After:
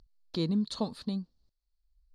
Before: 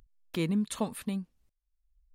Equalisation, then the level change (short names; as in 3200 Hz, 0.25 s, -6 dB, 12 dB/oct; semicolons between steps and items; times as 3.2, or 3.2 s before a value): synth low-pass 4400 Hz, resonance Q 6.4; bell 2400 Hz -14.5 dB 1.3 oct; 0.0 dB